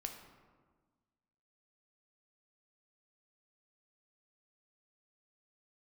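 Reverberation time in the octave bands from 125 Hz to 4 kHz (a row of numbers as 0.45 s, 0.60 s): 1.7 s, 1.8 s, 1.5 s, 1.4 s, 1.1 s, 0.75 s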